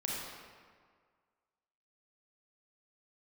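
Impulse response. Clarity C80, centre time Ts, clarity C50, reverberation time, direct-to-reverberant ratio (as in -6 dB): 0.5 dB, 0.11 s, -2.0 dB, 1.8 s, -4.5 dB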